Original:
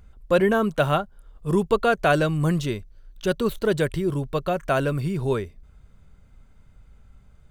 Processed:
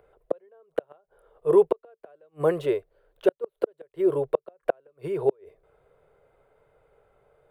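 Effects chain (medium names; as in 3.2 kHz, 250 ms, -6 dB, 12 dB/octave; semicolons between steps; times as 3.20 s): FFT filter 140 Hz 0 dB, 220 Hz -18 dB, 450 Hz +13 dB, 1.1 kHz +1 dB, 6.1 kHz -9 dB, 9.9 kHz +8 dB, 14 kHz +6 dB; inverted gate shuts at -8 dBFS, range -42 dB; three-band isolator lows -23 dB, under 190 Hz, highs -15 dB, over 3.9 kHz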